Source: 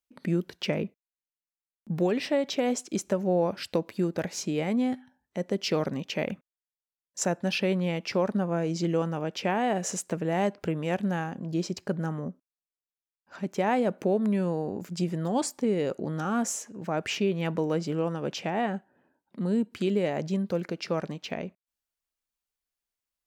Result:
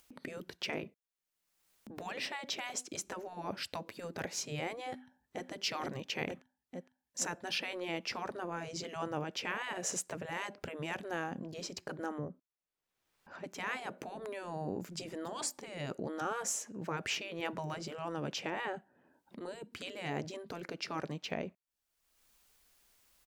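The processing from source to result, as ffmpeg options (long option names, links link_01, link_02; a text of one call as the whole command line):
ffmpeg -i in.wav -filter_complex "[0:a]asplit=2[link_01][link_02];[link_02]afade=type=in:start_time=4.89:duration=0.01,afade=type=out:start_time=5.49:duration=0.01,aecho=0:1:460|920|1380|1840|2300|2760|3220|3680|4140|4600:0.630957|0.410122|0.266579|0.173277|0.11263|0.0732094|0.0475861|0.030931|0.0201051|0.0130683[link_03];[link_01][link_03]amix=inputs=2:normalize=0,asettb=1/sr,asplit=3[link_04][link_05][link_06];[link_04]atrim=end=12.184[link_07];[link_05]atrim=start=12.18:end=13.44,asetpts=PTS-STARTPTS,afade=type=in:duration=0.004:curve=qsin,afade=type=out:start_time=1.256:duration=0.004:curve=qsin,highshelf=frequency=4300:gain=-12[link_08];[link_06]atrim=start=13.436[link_09];[link_07][link_08]acrossfade=duration=0.004:curve1=hsin:curve2=qsin[link_10];[link_10][link_09]acrossfade=duration=0.004:curve1=qsin:curve2=hsin,afftfilt=real='re*lt(hypot(re,im),0.178)':imag='im*lt(hypot(re,im),0.178)':win_size=1024:overlap=0.75,acompressor=mode=upward:threshold=-46dB:ratio=2.5,volume=-3dB" out.wav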